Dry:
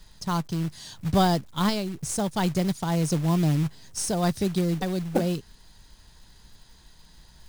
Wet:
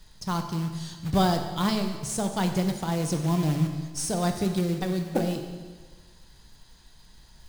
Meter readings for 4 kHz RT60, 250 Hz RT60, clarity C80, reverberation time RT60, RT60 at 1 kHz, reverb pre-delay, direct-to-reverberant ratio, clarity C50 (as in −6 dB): 1.4 s, 1.5 s, 8.5 dB, 1.4 s, 1.4 s, 14 ms, 5.5 dB, 7.0 dB